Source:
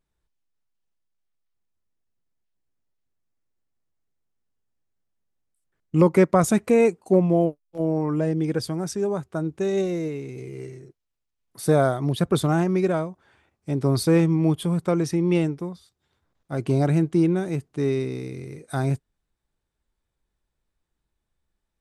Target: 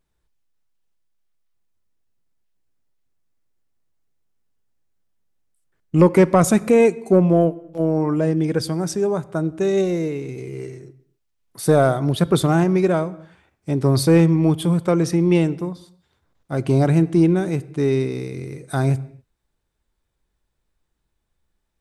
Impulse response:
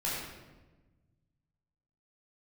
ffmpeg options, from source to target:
-filter_complex "[0:a]acontrast=42,asplit=2[a][b];[1:a]atrim=start_sample=2205,afade=t=out:st=0.33:d=0.01,atrim=end_sample=14994[c];[b][c]afir=irnorm=-1:irlink=0,volume=-23dB[d];[a][d]amix=inputs=2:normalize=0,volume=-1.5dB"

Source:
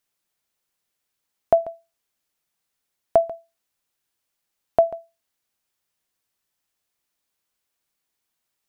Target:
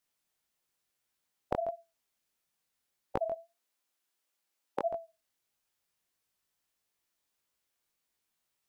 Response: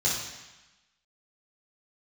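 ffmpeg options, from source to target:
-filter_complex "[0:a]asettb=1/sr,asplit=3[a][b][c];[a]atrim=end=3.344[d];[b]atrim=start=3.34:end=4.91,asetpts=PTS-STARTPTS,afade=t=in:d=0.004:c=qsin,afade=t=out:st=1.566:d=0.004:c=qsin,highpass=240[e];[c]atrim=start=4.906[f];[d][e]acrossfade=d=0.004:c1=hsin:c2=qsin[g];[g][f]acrossfade=d=0.004:c1=qsin:c2=hsin,afftfilt=real='re*lt(hypot(re,im),0.891)':imag='im*lt(hypot(re,im),0.891)':win_size=1024:overlap=0.75,flanger=delay=17.5:depth=6.3:speed=1.6"

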